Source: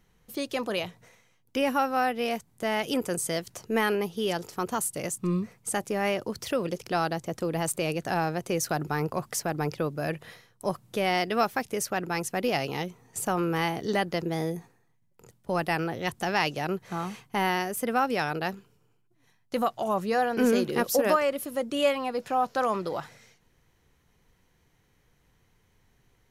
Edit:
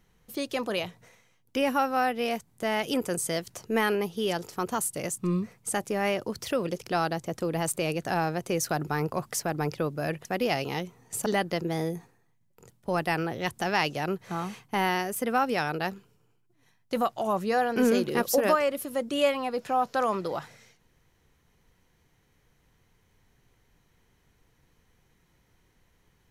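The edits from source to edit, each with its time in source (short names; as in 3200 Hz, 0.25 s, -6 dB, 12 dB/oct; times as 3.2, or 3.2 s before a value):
10.25–12.28 cut
13.29–13.87 cut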